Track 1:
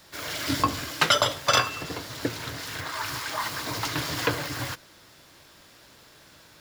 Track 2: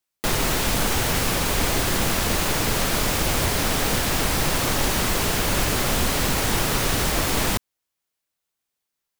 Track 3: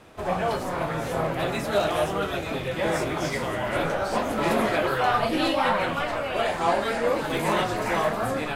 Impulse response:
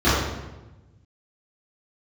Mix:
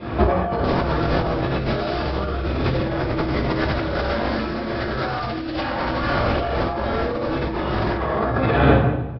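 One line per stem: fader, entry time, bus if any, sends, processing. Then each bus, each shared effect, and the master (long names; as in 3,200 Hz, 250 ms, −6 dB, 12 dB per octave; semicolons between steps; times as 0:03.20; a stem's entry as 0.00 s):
−3.0 dB, 1.35 s, muted 0:02.13–0:03.48, send −15 dB, Butterworth high-pass 1,400 Hz 72 dB per octave; automatic gain control gain up to 11.5 dB
−2.5 dB, 0.40 s, send −22 dB, no processing
−4.5 dB, 0.00 s, send −7 dB, no processing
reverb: on, RT60 1.1 s, pre-delay 3 ms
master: Butterworth low-pass 5,200 Hz 96 dB per octave; compressor whose output falls as the input rises −22 dBFS, ratio −1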